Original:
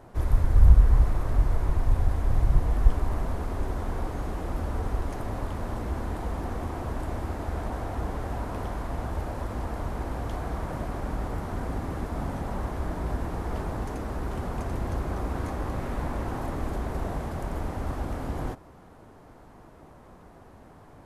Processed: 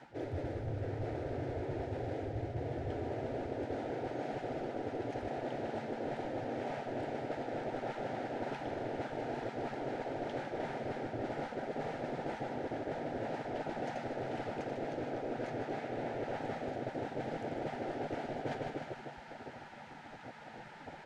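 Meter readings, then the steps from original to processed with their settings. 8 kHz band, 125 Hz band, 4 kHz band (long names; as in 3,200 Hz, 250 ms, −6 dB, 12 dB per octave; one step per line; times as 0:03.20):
can't be measured, −15.0 dB, −3.0 dB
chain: high-shelf EQ 2,800 Hz −7.5 dB
phaser with its sweep stopped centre 450 Hz, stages 4
on a send: repeating echo 154 ms, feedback 58%, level −9 dB
on the sum: gate on every frequency bin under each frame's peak −15 dB weak
reversed playback
downward compressor 16 to 1, threshold −52 dBFS, peak gain reduction 21 dB
reversed playback
high-frequency loss of the air 130 metres
level +17.5 dB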